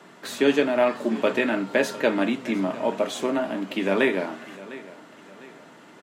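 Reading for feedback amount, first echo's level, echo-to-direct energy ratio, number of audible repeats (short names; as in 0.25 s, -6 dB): 41%, -18.0 dB, -17.0 dB, 3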